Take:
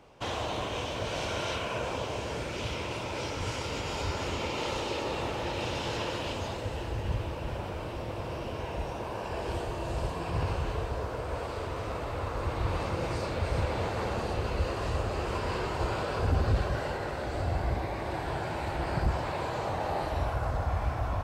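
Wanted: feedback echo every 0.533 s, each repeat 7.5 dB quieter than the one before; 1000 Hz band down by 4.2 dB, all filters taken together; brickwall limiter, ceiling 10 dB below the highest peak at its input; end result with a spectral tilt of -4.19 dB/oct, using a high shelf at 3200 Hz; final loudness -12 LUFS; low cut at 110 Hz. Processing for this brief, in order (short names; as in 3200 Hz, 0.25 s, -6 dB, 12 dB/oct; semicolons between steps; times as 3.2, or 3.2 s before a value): HPF 110 Hz; bell 1000 Hz -6 dB; high shelf 3200 Hz +6 dB; limiter -28.5 dBFS; feedback echo 0.533 s, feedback 42%, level -7.5 dB; gain +24.5 dB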